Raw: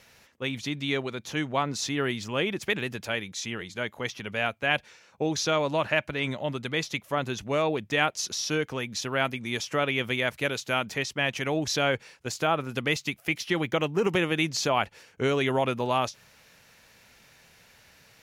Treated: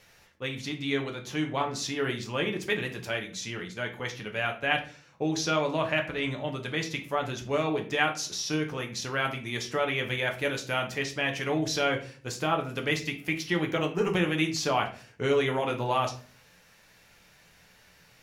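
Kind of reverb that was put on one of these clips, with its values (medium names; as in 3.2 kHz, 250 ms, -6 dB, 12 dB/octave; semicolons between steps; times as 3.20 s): simulated room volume 32 m³, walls mixed, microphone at 0.41 m; trim -3.5 dB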